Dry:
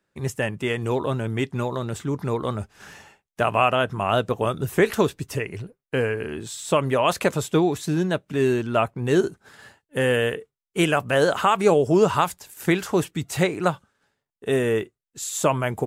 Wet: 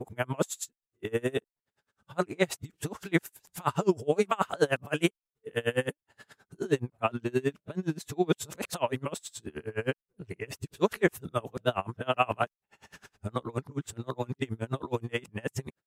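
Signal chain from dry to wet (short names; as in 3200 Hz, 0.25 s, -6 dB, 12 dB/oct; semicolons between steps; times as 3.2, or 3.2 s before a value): whole clip reversed; dB-linear tremolo 9.5 Hz, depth 30 dB; gain -2 dB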